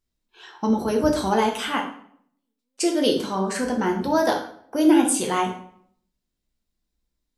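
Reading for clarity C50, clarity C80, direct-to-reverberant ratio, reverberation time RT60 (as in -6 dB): 7.0 dB, 11.0 dB, 0.5 dB, 0.65 s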